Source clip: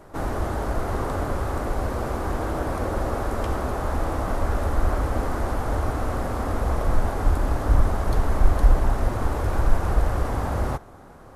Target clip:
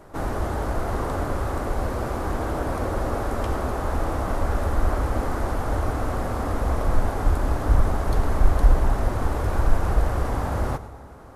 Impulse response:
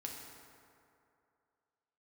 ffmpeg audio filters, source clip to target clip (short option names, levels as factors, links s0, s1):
-filter_complex "[0:a]asplit=2[s0][s1];[1:a]atrim=start_sample=2205,adelay=106[s2];[s1][s2]afir=irnorm=-1:irlink=0,volume=0.237[s3];[s0][s3]amix=inputs=2:normalize=0"